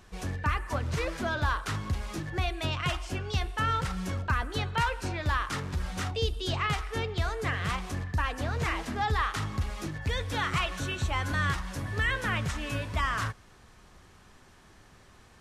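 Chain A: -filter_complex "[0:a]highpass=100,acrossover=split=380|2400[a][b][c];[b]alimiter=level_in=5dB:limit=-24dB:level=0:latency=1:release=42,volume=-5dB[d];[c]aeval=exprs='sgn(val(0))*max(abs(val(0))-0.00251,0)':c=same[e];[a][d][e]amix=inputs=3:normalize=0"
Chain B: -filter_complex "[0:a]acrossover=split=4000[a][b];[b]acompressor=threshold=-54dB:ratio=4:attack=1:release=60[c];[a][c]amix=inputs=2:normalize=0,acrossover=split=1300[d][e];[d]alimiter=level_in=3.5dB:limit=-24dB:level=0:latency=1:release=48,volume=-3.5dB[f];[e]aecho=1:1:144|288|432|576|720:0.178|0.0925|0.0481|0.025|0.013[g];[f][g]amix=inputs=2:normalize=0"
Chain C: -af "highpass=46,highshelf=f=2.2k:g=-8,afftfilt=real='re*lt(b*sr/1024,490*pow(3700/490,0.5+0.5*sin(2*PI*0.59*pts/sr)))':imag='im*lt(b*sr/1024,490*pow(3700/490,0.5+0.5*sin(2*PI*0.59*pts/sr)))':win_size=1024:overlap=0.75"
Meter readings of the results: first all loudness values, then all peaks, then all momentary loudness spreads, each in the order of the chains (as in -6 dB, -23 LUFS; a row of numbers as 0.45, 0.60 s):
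-34.0, -33.0, -34.0 LUFS; -17.0, -18.5, -17.5 dBFS; 4, 5, 5 LU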